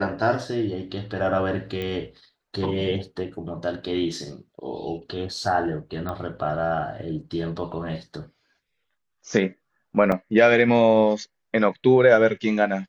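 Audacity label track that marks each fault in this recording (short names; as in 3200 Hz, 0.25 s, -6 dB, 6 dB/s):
1.820000	1.820000	pop -19 dBFS
6.090000	6.090000	pop -18 dBFS
10.120000	10.120000	gap 3.1 ms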